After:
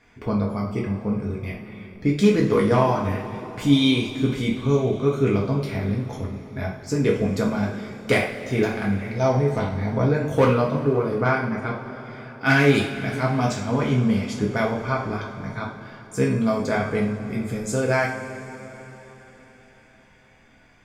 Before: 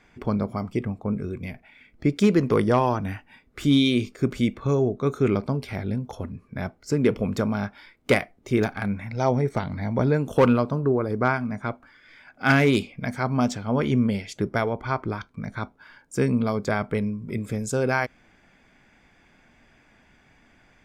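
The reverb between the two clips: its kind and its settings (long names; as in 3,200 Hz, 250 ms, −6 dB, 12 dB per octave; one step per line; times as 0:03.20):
coupled-rooms reverb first 0.43 s, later 4.4 s, from −18 dB, DRR −3 dB
level −2.5 dB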